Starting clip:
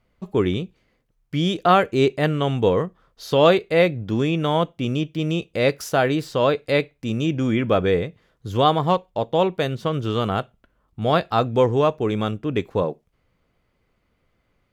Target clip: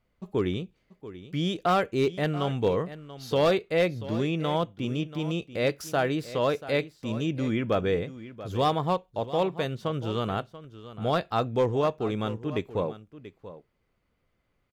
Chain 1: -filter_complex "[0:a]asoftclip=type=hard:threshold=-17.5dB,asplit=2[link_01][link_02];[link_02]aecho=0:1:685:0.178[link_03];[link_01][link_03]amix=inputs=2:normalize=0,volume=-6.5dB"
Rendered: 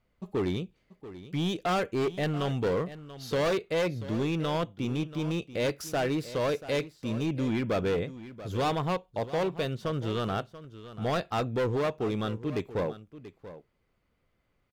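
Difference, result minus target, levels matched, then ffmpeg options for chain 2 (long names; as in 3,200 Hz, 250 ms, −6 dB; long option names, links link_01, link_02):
hard clipping: distortion +11 dB
-filter_complex "[0:a]asoftclip=type=hard:threshold=-10dB,asplit=2[link_01][link_02];[link_02]aecho=0:1:685:0.178[link_03];[link_01][link_03]amix=inputs=2:normalize=0,volume=-6.5dB"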